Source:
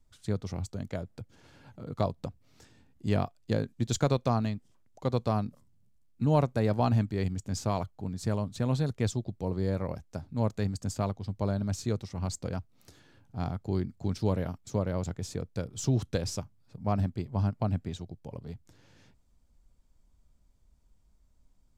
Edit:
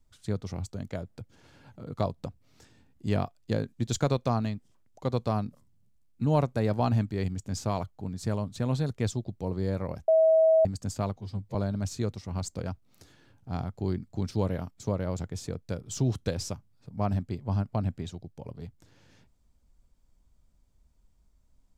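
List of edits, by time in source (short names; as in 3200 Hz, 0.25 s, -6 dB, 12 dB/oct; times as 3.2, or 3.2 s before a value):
10.08–10.65 bleep 643 Hz -17 dBFS
11.16–11.42 stretch 1.5×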